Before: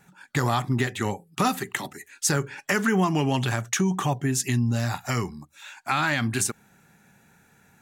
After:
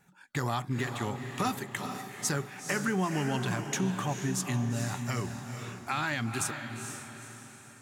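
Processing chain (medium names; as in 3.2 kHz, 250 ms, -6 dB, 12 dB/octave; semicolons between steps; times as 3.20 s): echo that smears into a reverb 466 ms, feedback 46%, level -7 dB; trim -7.5 dB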